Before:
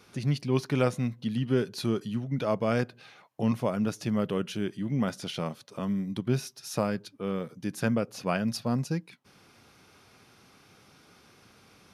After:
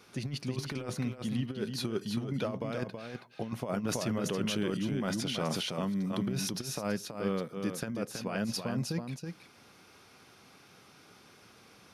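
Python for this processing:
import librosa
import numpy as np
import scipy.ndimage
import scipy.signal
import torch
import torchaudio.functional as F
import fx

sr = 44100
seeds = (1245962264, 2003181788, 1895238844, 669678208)

y = fx.low_shelf(x, sr, hz=120.0, db=-6.5)
y = fx.over_compress(y, sr, threshold_db=-30.0, ratio=-0.5)
y = y + 10.0 ** (-6.0 / 20.0) * np.pad(y, (int(325 * sr / 1000.0), 0))[:len(y)]
y = fx.sustainer(y, sr, db_per_s=22.0, at=(3.82, 6.62))
y = y * librosa.db_to_amplitude(-2.5)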